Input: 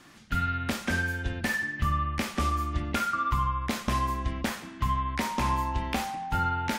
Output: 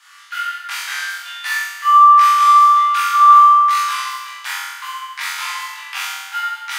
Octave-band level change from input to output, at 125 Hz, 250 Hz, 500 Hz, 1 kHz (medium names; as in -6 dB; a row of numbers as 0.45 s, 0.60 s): under -40 dB, under -40 dB, under -15 dB, +18.5 dB